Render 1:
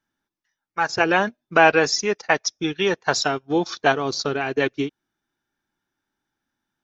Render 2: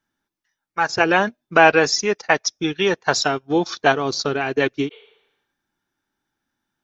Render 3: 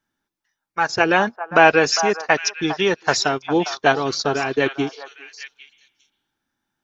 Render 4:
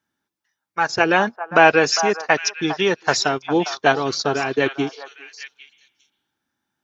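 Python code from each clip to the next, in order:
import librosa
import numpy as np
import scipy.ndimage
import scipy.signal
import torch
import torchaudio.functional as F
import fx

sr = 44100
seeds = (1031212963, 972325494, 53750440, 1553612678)

y1 = fx.spec_repair(x, sr, seeds[0], start_s=4.94, length_s=0.6, low_hz=370.0, high_hz=4500.0, source='both')
y1 = y1 * 10.0 ** (2.0 / 20.0)
y2 = fx.echo_stepped(y1, sr, ms=403, hz=960.0, octaves=1.4, feedback_pct=70, wet_db=-7)
y3 = scipy.signal.sosfilt(scipy.signal.butter(2, 69.0, 'highpass', fs=sr, output='sos'), y2)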